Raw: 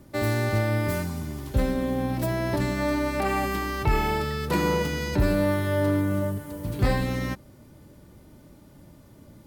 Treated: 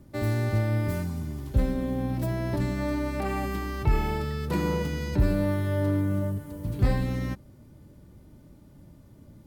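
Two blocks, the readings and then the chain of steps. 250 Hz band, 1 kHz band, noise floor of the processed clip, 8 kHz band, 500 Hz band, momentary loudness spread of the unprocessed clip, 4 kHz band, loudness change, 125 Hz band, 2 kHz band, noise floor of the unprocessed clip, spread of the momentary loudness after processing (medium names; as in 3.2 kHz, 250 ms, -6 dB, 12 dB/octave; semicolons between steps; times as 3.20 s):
-2.0 dB, -6.0 dB, -53 dBFS, -7.0 dB, -5.0 dB, 7 LU, -7.0 dB, -2.0 dB, +0.5 dB, -7.0 dB, -52 dBFS, 6 LU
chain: bass shelf 300 Hz +8.5 dB; trim -7 dB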